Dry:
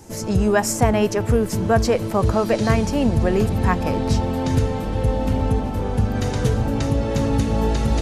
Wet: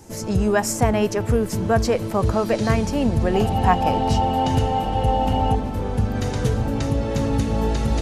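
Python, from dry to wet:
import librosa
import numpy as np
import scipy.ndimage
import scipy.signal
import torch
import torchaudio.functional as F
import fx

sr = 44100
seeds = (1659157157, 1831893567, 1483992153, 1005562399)

y = fx.small_body(x, sr, hz=(780.0, 2900.0), ring_ms=30, db=16, at=(3.34, 5.55))
y = F.gain(torch.from_numpy(y), -1.5).numpy()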